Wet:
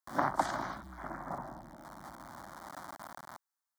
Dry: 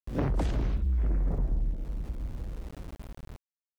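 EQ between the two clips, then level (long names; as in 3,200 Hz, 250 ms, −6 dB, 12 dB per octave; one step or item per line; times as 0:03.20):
high-pass filter 630 Hz 12 dB per octave
high-shelf EQ 3,000 Hz −7.5 dB
phaser with its sweep stopped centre 1,100 Hz, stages 4
+13.5 dB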